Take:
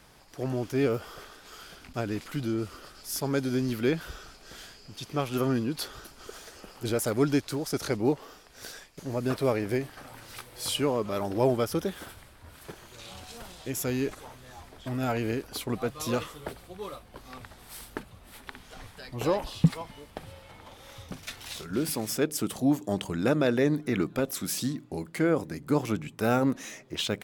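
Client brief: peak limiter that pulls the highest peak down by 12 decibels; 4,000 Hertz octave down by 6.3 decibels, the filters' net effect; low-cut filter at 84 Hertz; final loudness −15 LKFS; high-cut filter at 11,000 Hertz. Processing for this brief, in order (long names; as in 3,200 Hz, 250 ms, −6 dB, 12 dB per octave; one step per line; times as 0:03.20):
high-pass filter 84 Hz
low-pass filter 11,000 Hz
parametric band 4,000 Hz −8.5 dB
level +18.5 dB
brickwall limiter −2.5 dBFS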